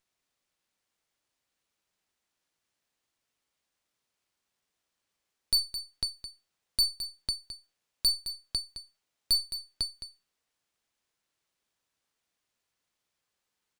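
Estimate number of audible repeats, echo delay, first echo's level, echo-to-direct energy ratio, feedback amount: 1, 214 ms, -11.5 dB, -11.5 dB, no regular repeats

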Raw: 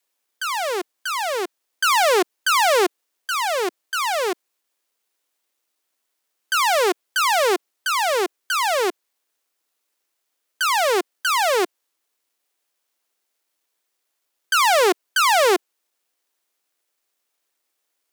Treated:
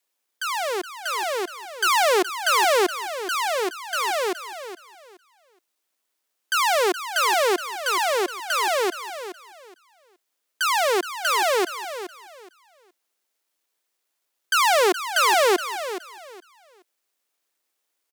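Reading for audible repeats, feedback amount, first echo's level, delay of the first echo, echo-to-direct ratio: 2, 23%, -11.5 dB, 420 ms, -11.5 dB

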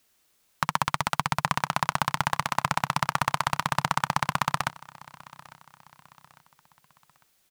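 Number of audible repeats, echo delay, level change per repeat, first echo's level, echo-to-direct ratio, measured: 2, 851 ms, -7.5 dB, -21.5 dB, -20.5 dB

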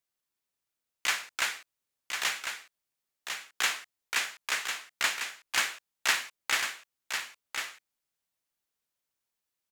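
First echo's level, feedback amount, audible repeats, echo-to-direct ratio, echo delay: -6.5 dB, no regular repeats, 1, -6.5 dB, 1050 ms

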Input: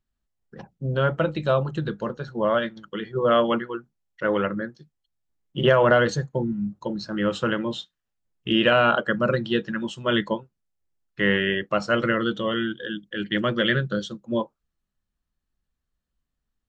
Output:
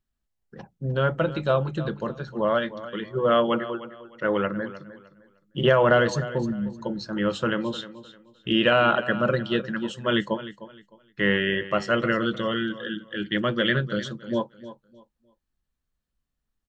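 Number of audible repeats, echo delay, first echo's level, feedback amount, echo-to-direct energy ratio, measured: 2, 306 ms, -15.0 dB, 26%, -14.5 dB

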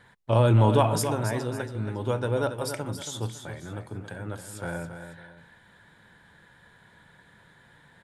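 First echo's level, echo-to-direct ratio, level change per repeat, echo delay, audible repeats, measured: -9.0 dB, -8.5 dB, -9.0 dB, 277 ms, 2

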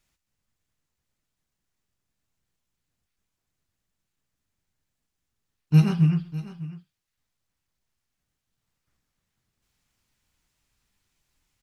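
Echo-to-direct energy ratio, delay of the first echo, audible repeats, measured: -14.5 dB, 128 ms, 2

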